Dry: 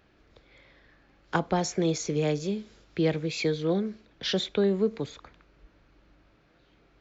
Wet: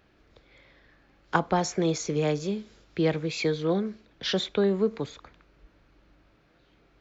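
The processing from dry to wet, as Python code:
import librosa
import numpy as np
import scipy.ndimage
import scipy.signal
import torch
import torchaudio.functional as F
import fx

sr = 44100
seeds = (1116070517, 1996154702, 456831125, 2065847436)

y = fx.dynamic_eq(x, sr, hz=1100.0, q=1.2, threshold_db=-43.0, ratio=4.0, max_db=5)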